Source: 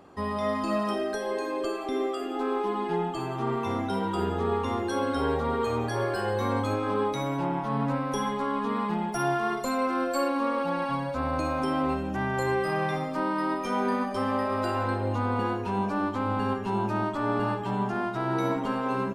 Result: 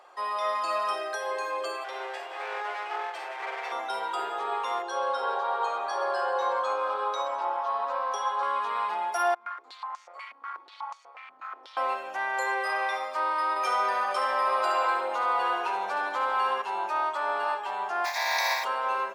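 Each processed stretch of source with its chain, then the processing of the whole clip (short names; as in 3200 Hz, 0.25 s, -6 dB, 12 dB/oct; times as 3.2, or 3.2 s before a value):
1.84–3.72 minimum comb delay 0.37 ms + HPF 400 Hz 24 dB/oct + high shelf 3900 Hz -8 dB
4.82–8.43 BPF 270–5800 Hz + bell 2100 Hz -9.5 dB + narrowing echo 0.128 s, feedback 75%, band-pass 1100 Hz, level -5 dB
9.34–11.77 minimum comb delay 0.88 ms + AM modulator 210 Hz, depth 35% + stepped band-pass 8.2 Hz 200–6500 Hz
13.56–16.62 feedback echo 72 ms, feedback 49%, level -6.5 dB + fast leveller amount 50%
18.04–18.63 spectral contrast lowered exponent 0.34 + bell 1800 Hz +4 dB 2 oct + fixed phaser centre 2000 Hz, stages 8
whole clip: HPF 620 Hz 24 dB/oct; high shelf 8900 Hz -6 dB; comb 5.6 ms, depth 32%; gain +3 dB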